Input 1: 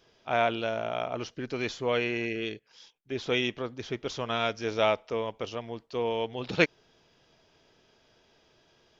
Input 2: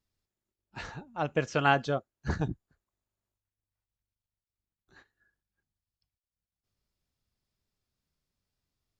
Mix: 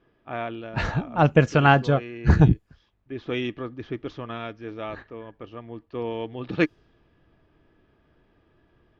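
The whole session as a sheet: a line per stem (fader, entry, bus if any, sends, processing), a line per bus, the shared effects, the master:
−3.0 dB, 0.00 s, no send, hollow resonant body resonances 310/1,200/1,700 Hz, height 10 dB; automatic ducking −8 dB, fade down 0.90 s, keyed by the second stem
−1.0 dB, 0.00 s, no send, automatic gain control gain up to 14.5 dB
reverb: not used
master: bass and treble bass +7 dB, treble −7 dB; low-pass that shuts in the quiet parts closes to 2,400 Hz, open at −18 dBFS

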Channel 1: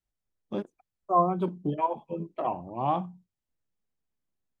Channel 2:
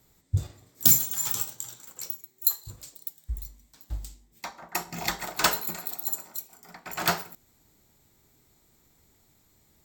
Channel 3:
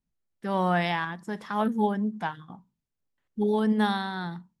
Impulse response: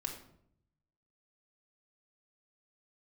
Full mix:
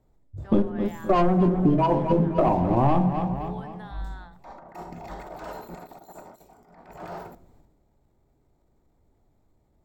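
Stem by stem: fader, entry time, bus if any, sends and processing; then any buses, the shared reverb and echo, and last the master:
0.0 dB, 0.00 s, no bus, send −5.5 dB, echo send −10 dB, hum removal 47.28 Hz, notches 21; leveller curve on the samples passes 3
−13.5 dB, 0.00 s, bus A, send −14.5 dB, no echo send, parametric band 650 Hz +11.5 dB 1.9 octaves; transient designer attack −9 dB, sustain +10 dB; automatic ducking −22 dB, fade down 0.40 s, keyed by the first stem
−9.0 dB, 0.00 s, bus A, no send, no echo send, high-pass filter 790 Hz 12 dB per octave
bus A: 0.0 dB, brickwall limiter −32.5 dBFS, peak gain reduction 15 dB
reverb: on, RT60 0.70 s, pre-delay 3 ms
echo: repeating echo 260 ms, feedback 43%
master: spectral tilt −3.5 dB per octave; downward compressor 6 to 1, threshold −17 dBFS, peak gain reduction 11 dB

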